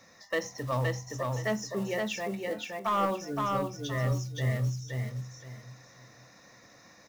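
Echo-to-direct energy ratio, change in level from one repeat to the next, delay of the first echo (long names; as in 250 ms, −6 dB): −2.5 dB, −11.5 dB, 519 ms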